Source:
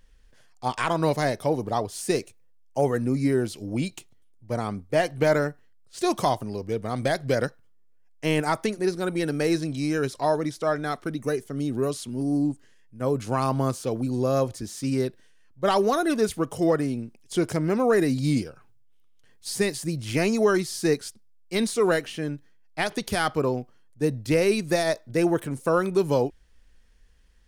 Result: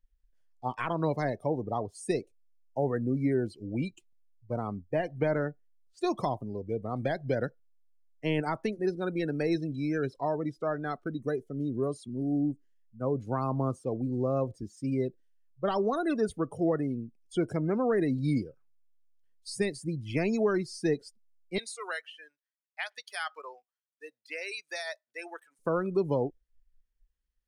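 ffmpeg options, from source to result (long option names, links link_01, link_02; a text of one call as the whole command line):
ffmpeg -i in.wav -filter_complex "[0:a]asettb=1/sr,asplit=3[link_01][link_02][link_03];[link_01]atrim=end=21.584[link_04];[link_02]atrim=start=21.58:end=25.59,asetpts=PTS-STARTPTS,afade=type=in:duration=0.004:curve=qsin,afade=type=out:start_time=4.006:duration=0.004:curve=qsin,highpass=1200[link_05];[link_03]atrim=start=25.586[link_06];[link_04][link_05]acrossfade=duration=0.004:curve1=hsin:curve2=qsin[link_07];[link_07][link_06]acrossfade=duration=0.004:curve1=qsin:curve2=hsin,acrossover=split=390[link_08][link_09];[link_09]acompressor=threshold=-24dB:ratio=3[link_10];[link_08][link_10]amix=inputs=2:normalize=0,afftdn=noise_reduction=23:noise_floor=-34,volume=-4.5dB" out.wav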